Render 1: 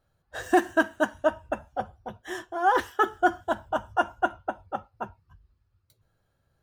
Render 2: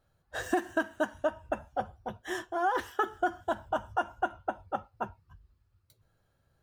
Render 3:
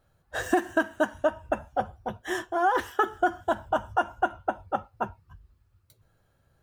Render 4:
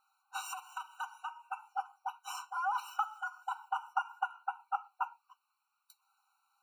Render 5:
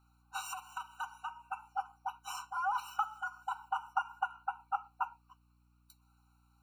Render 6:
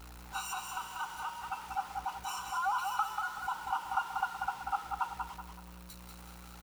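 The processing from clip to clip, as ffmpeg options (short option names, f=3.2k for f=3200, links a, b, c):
-af "acompressor=threshold=-26dB:ratio=4"
-af "equalizer=f=4.5k:t=o:w=0.77:g=-2.5,volume=5dB"
-filter_complex "[0:a]acrossover=split=170[a][b];[b]acompressor=threshold=-28dB:ratio=6[c];[a][c]amix=inputs=2:normalize=0,afftfilt=real='re*eq(mod(floor(b*sr/1024/760),2),1)':imag='im*eq(mod(floor(b*sr/1024/760),2),1)':win_size=1024:overlap=0.75,volume=1dB"
-af "aeval=exprs='val(0)+0.000398*(sin(2*PI*60*n/s)+sin(2*PI*2*60*n/s)/2+sin(2*PI*3*60*n/s)/3+sin(2*PI*4*60*n/s)/4+sin(2*PI*5*60*n/s)/5)':c=same"
-filter_complex "[0:a]aeval=exprs='val(0)+0.5*0.00631*sgn(val(0))':c=same,asplit=2[a][b];[b]aecho=0:1:189|378|567|756|945:0.562|0.214|0.0812|0.0309|0.0117[c];[a][c]amix=inputs=2:normalize=0"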